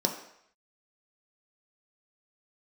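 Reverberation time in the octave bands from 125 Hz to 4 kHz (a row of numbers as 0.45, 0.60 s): 0.55, 0.55, 0.70, 0.75, 0.75, 0.70 s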